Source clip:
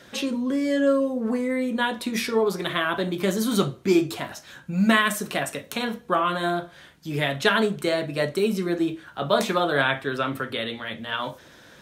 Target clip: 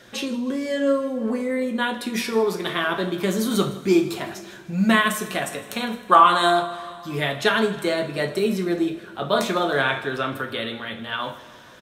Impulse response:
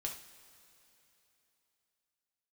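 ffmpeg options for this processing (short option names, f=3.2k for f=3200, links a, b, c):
-filter_complex "[0:a]asettb=1/sr,asplit=3[a][b][c];[a]atrim=end=6.114[d];[b]atrim=start=6.11:end=6.62,asetpts=PTS-STARTPTS,afade=t=in:d=0.004:c=qsin,afade=t=out:st=0.506:d=0.004:c=qsin,equalizer=f=125:t=o:w=1:g=-4,equalizer=f=1k:t=o:w=1:g=11,equalizer=f=4k:t=o:w=1:g=8,equalizer=f=8k:t=o:w=1:g=11[e];[c]atrim=start=6.616[f];[d][e]acrossfade=d=0.004:c1=hsin:c2=qsin[g];[g][f]acrossfade=d=0.004:c1=qsin:c2=hsin,aecho=1:1:158|316|474|632|790:0.112|0.0628|0.0352|0.0197|0.011,asplit=2[h][i];[1:a]atrim=start_sample=2205[j];[i][j]afir=irnorm=-1:irlink=0,volume=1dB[k];[h][k]amix=inputs=2:normalize=0,volume=-5dB"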